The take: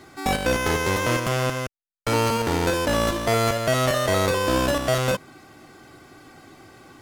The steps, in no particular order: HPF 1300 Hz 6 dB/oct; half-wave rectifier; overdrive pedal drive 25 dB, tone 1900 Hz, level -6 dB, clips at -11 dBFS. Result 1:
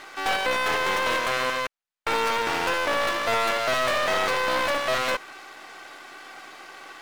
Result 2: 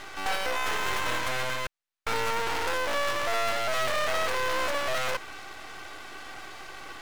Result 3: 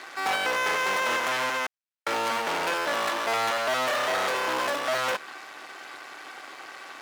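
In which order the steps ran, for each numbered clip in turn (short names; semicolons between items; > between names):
HPF > half-wave rectifier > overdrive pedal; overdrive pedal > HPF > half-wave rectifier; half-wave rectifier > overdrive pedal > HPF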